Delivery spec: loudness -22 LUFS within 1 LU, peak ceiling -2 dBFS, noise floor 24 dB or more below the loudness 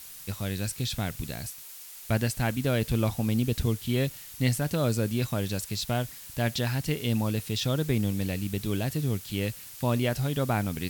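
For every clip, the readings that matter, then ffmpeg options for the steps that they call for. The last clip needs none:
noise floor -45 dBFS; noise floor target -53 dBFS; loudness -29.0 LUFS; peak -10.5 dBFS; loudness target -22.0 LUFS
-> -af "afftdn=nr=8:nf=-45"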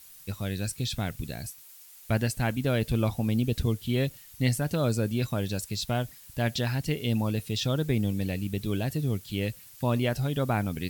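noise floor -51 dBFS; noise floor target -54 dBFS
-> -af "afftdn=nr=6:nf=-51"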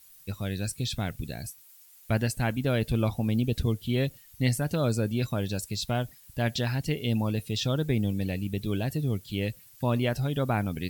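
noise floor -54 dBFS; loudness -29.5 LUFS; peak -10.5 dBFS; loudness target -22.0 LUFS
-> -af "volume=7.5dB"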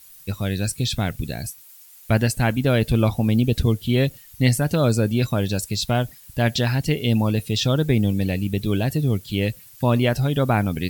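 loudness -22.0 LUFS; peak -3.0 dBFS; noise floor -47 dBFS

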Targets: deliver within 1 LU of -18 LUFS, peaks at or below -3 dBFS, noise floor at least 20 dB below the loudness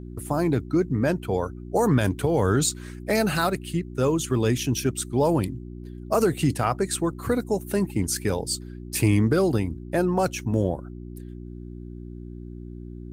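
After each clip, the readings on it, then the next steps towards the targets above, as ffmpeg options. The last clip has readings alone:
hum 60 Hz; harmonics up to 360 Hz; hum level -36 dBFS; loudness -24.5 LUFS; peak -9.0 dBFS; loudness target -18.0 LUFS
-> -af "bandreject=f=60:t=h:w=4,bandreject=f=120:t=h:w=4,bandreject=f=180:t=h:w=4,bandreject=f=240:t=h:w=4,bandreject=f=300:t=h:w=4,bandreject=f=360:t=h:w=4"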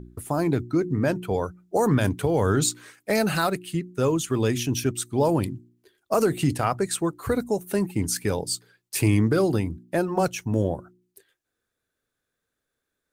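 hum none; loudness -25.0 LUFS; peak -9.0 dBFS; loudness target -18.0 LUFS
-> -af "volume=7dB,alimiter=limit=-3dB:level=0:latency=1"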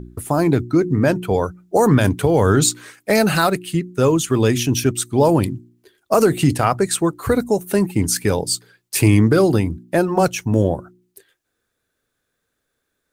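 loudness -18.0 LUFS; peak -3.0 dBFS; noise floor -75 dBFS

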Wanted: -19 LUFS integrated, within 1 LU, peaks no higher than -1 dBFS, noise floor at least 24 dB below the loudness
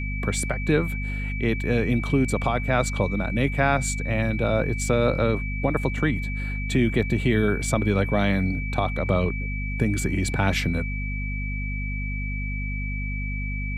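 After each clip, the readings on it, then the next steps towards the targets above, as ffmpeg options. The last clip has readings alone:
hum 50 Hz; harmonics up to 250 Hz; hum level -26 dBFS; steady tone 2300 Hz; tone level -33 dBFS; loudness -25.0 LUFS; peak -8.0 dBFS; loudness target -19.0 LUFS
-> -af "bandreject=f=50:t=h:w=4,bandreject=f=100:t=h:w=4,bandreject=f=150:t=h:w=4,bandreject=f=200:t=h:w=4,bandreject=f=250:t=h:w=4"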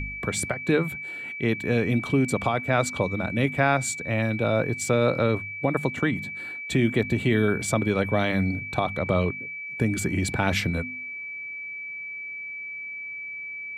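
hum none; steady tone 2300 Hz; tone level -33 dBFS
-> -af "bandreject=f=2.3k:w=30"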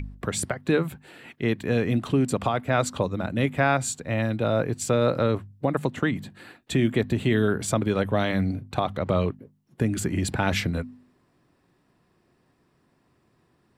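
steady tone none; loudness -25.5 LUFS; peak -10.0 dBFS; loudness target -19.0 LUFS
-> -af "volume=6.5dB"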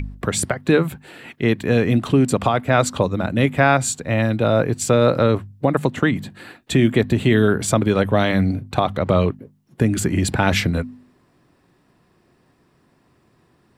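loudness -19.0 LUFS; peak -3.5 dBFS; noise floor -60 dBFS

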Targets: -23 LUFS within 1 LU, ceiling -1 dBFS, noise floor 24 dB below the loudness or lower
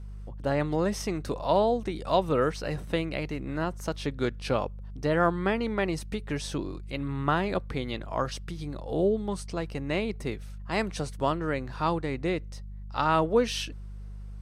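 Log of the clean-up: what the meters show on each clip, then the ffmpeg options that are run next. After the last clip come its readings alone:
hum 50 Hz; harmonics up to 200 Hz; hum level -37 dBFS; loudness -29.5 LUFS; peak -10.0 dBFS; loudness target -23.0 LUFS
-> -af "bandreject=f=50:t=h:w=4,bandreject=f=100:t=h:w=4,bandreject=f=150:t=h:w=4,bandreject=f=200:t=h:w=4"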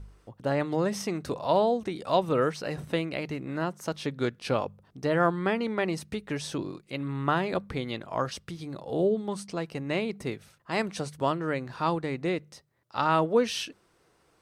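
hum none; loudness -29.5 LUFS; peak -10.0 dBFS; loudness target -23.0 LUFS
-> -af "volume=6.5dB"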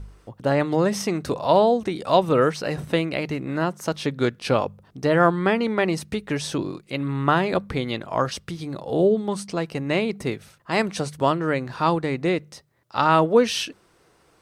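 loudness -23.0 LUFS; peak -3.5 dBFS; noise floor -60 dBFS

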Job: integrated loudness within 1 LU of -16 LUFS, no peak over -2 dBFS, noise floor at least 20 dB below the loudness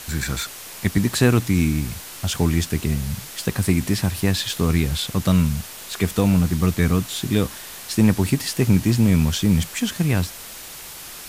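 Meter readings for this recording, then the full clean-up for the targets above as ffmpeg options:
noise floor -37 dBFS; noise floor target -41 dBFS; loudness -21.0 LUFS; peak -4.0 dBFS; loudness target -16.0 LUFS
-> -af "afftdn=nr=6:nf=-37"
-af "volume=5dB,alimiter=limit=-2dB:level=0:latency=1"

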